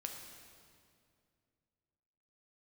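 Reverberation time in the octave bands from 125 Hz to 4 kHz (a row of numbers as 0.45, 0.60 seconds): 2.9, 2.8, 2.5, 2.2, 2.0, 1.8 seconds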